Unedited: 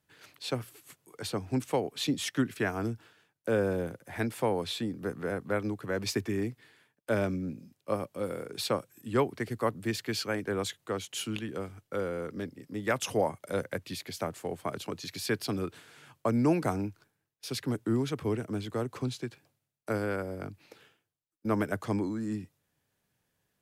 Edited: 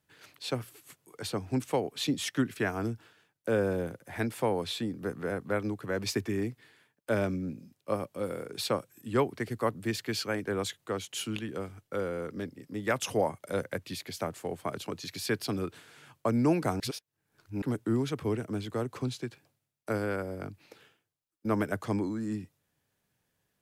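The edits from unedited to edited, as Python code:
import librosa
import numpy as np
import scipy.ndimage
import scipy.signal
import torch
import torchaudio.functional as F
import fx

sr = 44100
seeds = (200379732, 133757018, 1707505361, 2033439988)

y = fx.edit(x, sr, fx.reverse_span(start_s=16.8, length_s=0.82), tone=tone)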